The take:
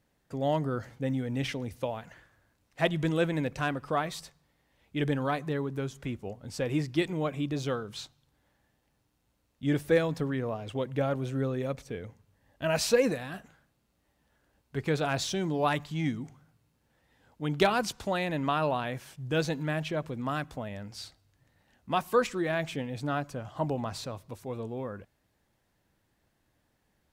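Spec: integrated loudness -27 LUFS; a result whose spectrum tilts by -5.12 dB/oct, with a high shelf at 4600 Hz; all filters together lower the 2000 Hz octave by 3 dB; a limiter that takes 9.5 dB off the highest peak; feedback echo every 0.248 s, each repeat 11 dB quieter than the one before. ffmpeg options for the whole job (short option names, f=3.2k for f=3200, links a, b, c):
-af "equalizer=f=2k:t=o:g=-5.5,highshelf=f=4.6k:g=8,alimiter=limit=-20.5dB:level=0:latency=1,aecho=1:1:248|496|744:0.282|0.0789|0.0221,volume=6dB"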